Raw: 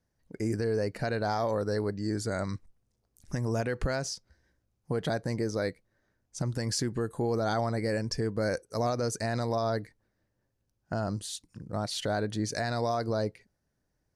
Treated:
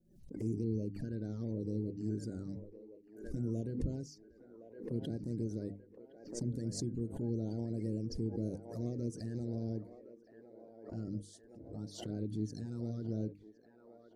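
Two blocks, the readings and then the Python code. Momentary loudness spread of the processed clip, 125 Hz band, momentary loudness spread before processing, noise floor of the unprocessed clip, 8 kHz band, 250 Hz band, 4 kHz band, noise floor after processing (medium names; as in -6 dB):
17 LU, -5.5 dB, 7 LU, -79 dBFS, -13.0 dB, -4.0 dB, -16.5 dB, -62 dBFS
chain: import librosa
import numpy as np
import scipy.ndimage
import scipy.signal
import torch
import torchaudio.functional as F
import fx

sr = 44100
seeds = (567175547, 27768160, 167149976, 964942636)

y = fx.spec_quant(x, sr, step_db=30)
y = fx.curve_eq(y, sr, hz=(300.0, 1200.0, 5300.0), db=(0, -27, -12))
y = fx.env_flanger(y, sr, rest_ms=5.4, full_db=-28.0)
y = fx.hum_notches(y, sr, base_hz=50, count=6)
y = fx.echo_wet_bandpass(y, sr, ms=1064, feedback_pct=59, hz=1000.0, wet_db=-6.0)
y = fx.pre_swell(y, sr, db_per_s=91.0)
y = y * 10.0 ** (-3.5 / 20.0)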